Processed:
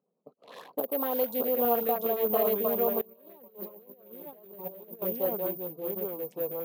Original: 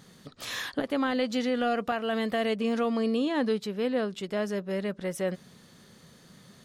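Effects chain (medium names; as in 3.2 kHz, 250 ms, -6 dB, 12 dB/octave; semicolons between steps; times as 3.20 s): local Wiener filter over 25 samples; ever faster or slower copies 528 ms, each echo -2 st, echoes 2; gate -47 dBFS, range -18 dB; careless resampling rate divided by 3×, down none, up zero stuff; high-order bell 680 Hz +11 dB; level-controlled noise filter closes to 2.8 kHz, open at -21 dBFS; high-pass 180 Hz 24 dB/octave; LFO notch saw up 9.7 Hz 750–2300 Hz; 3.01–5.02 s: compressor with a negative ratio -33 dBFS, ratio -0.5; trim -8.5 dB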